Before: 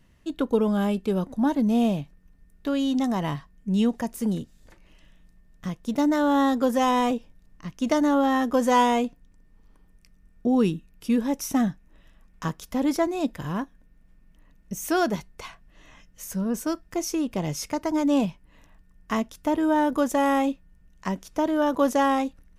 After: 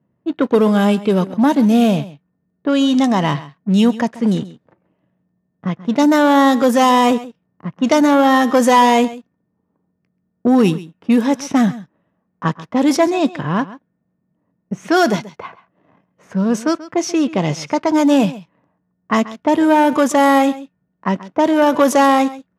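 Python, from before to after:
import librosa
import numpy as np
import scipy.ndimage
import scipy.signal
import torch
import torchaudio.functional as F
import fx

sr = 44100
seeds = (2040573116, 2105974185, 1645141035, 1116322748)

y = fx.low_shelf(x, sr, hz=460.0, db=-6.5)
y = fx.leveller(y, sr, passes=2)
y = scipy.signal.sosfilt(scipy.signal.butter(4, 120.0, 'highpass', fs=sr, output='sos'), y)
y = fx.low_shelf(y, sr, hz=170.0, db=4.5)
y = fx.env_lowpass(y, sr, base_hz=700.0, full_db=-15.0)
y = y + 10.0 ** (-17.0 / 20.0) * np.pad(y, (int(134 * sr / 1000.0), 0))[:len(y)]
y = F.gain(torch.from_numpy(y), 6.0).numpy()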